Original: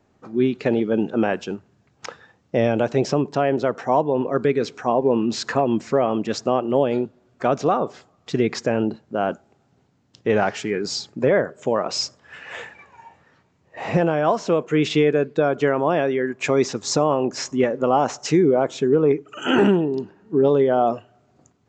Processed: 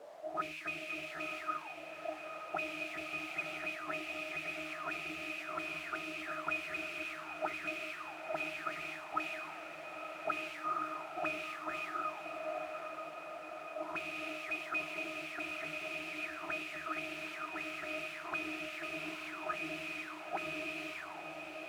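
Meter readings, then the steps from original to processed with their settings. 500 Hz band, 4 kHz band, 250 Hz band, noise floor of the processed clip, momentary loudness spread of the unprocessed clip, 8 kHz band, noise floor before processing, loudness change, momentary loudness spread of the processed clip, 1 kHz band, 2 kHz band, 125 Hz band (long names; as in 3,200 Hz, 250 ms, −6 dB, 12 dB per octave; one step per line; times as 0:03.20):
−24.5 dB, −15.0 dB, −25.5 dB, −47 dBFS, 10 LU, −20.5 dB, −63 dBFS, −18.5 dB, 6 LU, −16.0 dB, −7.0 dB, −31.5 dB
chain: samples sorted by size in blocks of 128 samples
mains-hum notches 60/120/180/240/300/360 Hz
treble cut that deepens with the level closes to 800 Hz, closed at −14.5 dBFS
parametric band 660 Hz +2.5 dB 2 octaves
random phases in short frames
resonances in every octave D#, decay 0.24 s
in parallel at −9 dB: bit-depth reduction 6 bits, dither triangular
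on the sum: envelope filter 460–2,500 Hz, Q 11, up, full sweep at −26.5 dBFS
on a send: feedback delay with all-pass diffusion 921 ms, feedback 70%, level −8 dB
on the sum: level +16.5 dB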